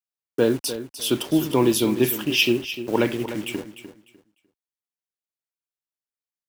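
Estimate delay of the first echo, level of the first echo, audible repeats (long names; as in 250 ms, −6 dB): 300 ms, −12.0 dB, 2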